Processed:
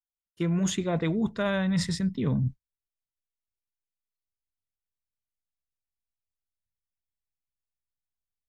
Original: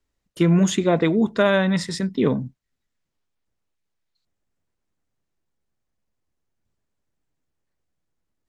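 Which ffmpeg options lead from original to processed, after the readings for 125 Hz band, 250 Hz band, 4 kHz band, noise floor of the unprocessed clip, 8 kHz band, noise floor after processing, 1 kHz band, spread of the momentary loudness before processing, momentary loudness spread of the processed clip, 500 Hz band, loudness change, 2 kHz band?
−4.5 dB, −7.0 dB, −6.0 dB, −79 dBFS, −4.0 dB, below −85 dBFS, −9.5 dB, 8 LU, 3 LU, −11.0 dB, −7.5 dB, −9.0 dB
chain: -af "agate=range=-33dB:threshold=-34dB:ratio=3:detection=peak,asubboost=boost=9.5:cutoff=140,areverse,acompressor=threshold=-24dB:ratio=6,areverse"

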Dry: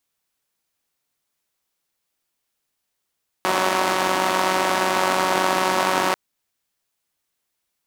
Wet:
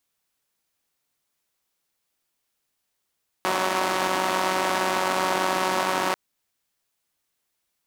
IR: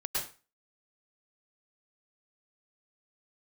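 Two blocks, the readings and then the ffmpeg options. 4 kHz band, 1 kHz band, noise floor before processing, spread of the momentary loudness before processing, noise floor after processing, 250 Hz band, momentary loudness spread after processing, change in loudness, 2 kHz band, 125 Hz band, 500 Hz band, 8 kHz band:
−3.5 dB, −3.5 dB, −78 dBFS, 5 LU, −78 dBFS, −3.5 dB, 4 LU, −3.5 dB, −3.5 dB, −3.5 dB, −3.5 dB, −3.5 dB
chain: -af "alimiter=limit=-9.5dB:level=0:latency=1:release=76"

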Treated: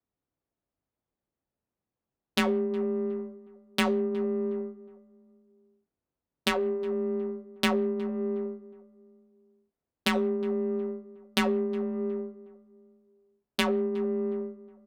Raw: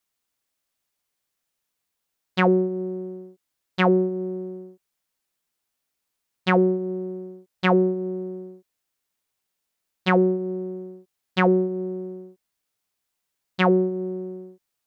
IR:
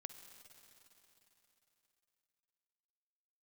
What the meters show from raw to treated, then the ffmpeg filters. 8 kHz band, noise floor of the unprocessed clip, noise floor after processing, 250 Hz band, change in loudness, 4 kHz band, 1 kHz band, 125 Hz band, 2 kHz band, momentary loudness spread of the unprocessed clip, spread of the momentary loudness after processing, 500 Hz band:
can't be measured, −81 dBFS, below −85 dBFS, −5.5 dB, −6.5 dB, +2.0 dB, −8.5 dB, −13.5 dB, −5.0 dB, 18 LU, 10 LU, −5.0 dB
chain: -filter_complex "[0:a]acompressor=threshold=-32dB:ratio=6,aemphasis=mode=production:type=75fm,afreqshift=30,asplit=2[link_01][link_02];[1:a]atrim=start_sample=2205,afade=type=out:start_time=0.24:duration=0.01,atrim=end_sample=11025[link_03];[link_02][link_03]afir=irnorm=-1:irlink=0,volume=-1dB[link_04];[link_01][link_04]amix=inputs=2:normalize=0,adynamicsmooth=sensitivity=2.5:basefreq=590,asplit=2[link_05][link_06];[link_06]adelay=364,lowpass=frequency=1400:poles=1,volume=-18dB,asplit=2[link_07][link_08];[link_08]adelay=364,lowpass=frequency=1400:poles=1,volume=0.42,asplit=2[link_09][link_10];[link_10]adelay=364,lowpass=frequency=1400:poles=1,volume=0.42[link_11];[link_05][link_07][link_09][link_11]amix=inputs=4:normalize=0,flanger=delay=6.8:depth=4.5:regen=-76:speed=0.15:shape=triangular,asplit=2[link_12][link_13];[link_13]adelay=23,volume=-11dB[link_14];[link_12][link_14]amix=inputs=2:normalize=0,volume=8dB"

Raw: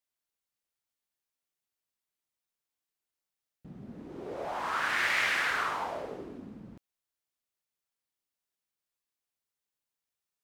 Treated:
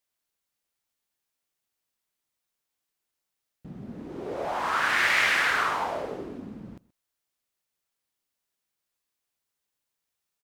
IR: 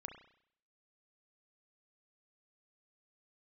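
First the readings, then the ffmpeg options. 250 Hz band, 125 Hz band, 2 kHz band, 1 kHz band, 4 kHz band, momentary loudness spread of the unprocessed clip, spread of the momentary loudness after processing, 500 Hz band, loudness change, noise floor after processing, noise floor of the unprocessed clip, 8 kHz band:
+5.5 dB, +5.5 dB, +5.5 dB, +5.5 dB, +5.5 dB, 21 LU, 21 LU, +5.5 dB, +5.5 dB, −84 dBFS, below −85 dBFS, +5.5 dB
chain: -filter_complex "[0:a]asplit=2[link_01][link_02];[link_02]adelay=128.3,volume=-22dB,highshelf=frequency=4000:gain=-2.89[link_03];[link_01][link_03]amix=inputs=2:normalize=0,volume=5.5dB"

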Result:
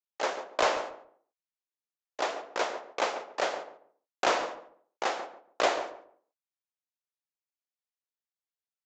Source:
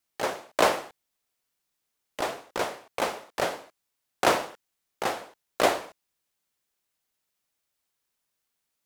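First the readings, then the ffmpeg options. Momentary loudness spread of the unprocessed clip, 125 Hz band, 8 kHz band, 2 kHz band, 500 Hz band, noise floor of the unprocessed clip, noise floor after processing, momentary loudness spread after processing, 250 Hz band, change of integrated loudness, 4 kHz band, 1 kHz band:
18 LU, below −10 dB, −4.5 dB, −2.0 dB, −3.0 dB, −81 dBFS, below −85 dBFS, 14 LU, −7.0 dB, −3.0 dB, −2.0 dB, −2.0 dB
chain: -filter_complex "[0:a]agate=range=-19dB:threshold=-40dB:ratio=16:detection=peak,highpass=390,asplit=2[link_01][link_02];[link_02]alimiter=limit=-15.5dB:level=0:latency=1:release=148,volume=0.5dB[link_03];[link_01][link_03]amix=inputs=2:normalize=0,asoftclip=type=hard:threshold=-10dB,asplit=2[link_04][link_05];[link_05]adelay=141,lowpass=frequency=940:poles=1,volume=-8dB,asplit=2[link_06][link_07];[link_07]adelay=141,lowpass=frequency=940:poles=1,volume=0.25,asplit=2[link_08][link_09];[link_09]adelay=141,lowpass=frequency=940:poles=1,volume=0.25[link_10];[link_04][link_06][link_08][link_10]amix=inputs=4:normalize=0,aresample=16000,aresample=44100,volume=-6.5dB"

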